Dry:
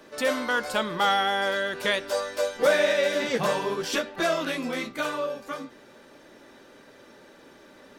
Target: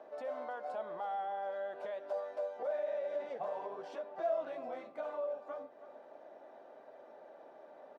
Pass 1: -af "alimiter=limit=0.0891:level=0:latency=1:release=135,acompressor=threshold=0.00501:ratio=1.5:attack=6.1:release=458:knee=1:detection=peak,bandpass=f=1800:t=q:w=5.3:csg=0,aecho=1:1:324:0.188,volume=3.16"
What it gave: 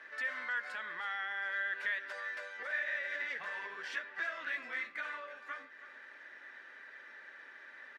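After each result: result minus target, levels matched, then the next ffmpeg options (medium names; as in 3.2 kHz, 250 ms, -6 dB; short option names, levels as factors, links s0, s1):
2 kHz band +17.5 dB; compression: peak gain reduction -2.5 dB
-af "alimiter=limit=0.0891:level=0:latency=1:release=135,acompressor=threshold=0.00501:ratio=1.5:attack=6.1:release=458:knee=1:detection=peak,bandpass=f=690:t=q:w=5.3:csg=0,aecho=1:1:324:0.188,volume=3.16"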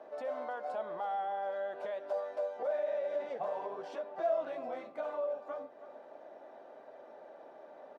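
compression: peak gain reduction -2.5 dB
-af "alimiter=limit=0.0891:level=0:latency=1:release=135,acompressor=threshold=0.00211:ratio=1.5:attack=6.1:release=458:knee=1:detection=peak,bandpass=f=690:t=q:w=5.3:csg=0,aecho=1:1:324:0.188,volume=3.16"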